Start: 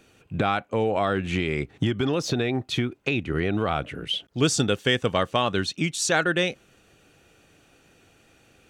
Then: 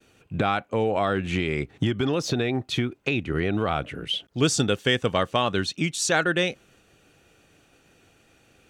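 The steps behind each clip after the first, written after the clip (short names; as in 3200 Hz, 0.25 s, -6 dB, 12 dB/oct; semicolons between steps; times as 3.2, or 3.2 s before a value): expander -56 dBFS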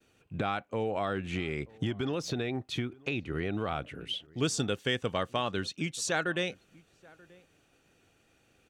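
outdoor echo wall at 160 m, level -24 dB; gain -8 dB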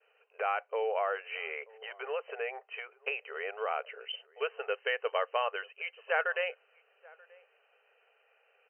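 brick-wall FIR band-pass 410–3100 Hz; gain +1.5 dB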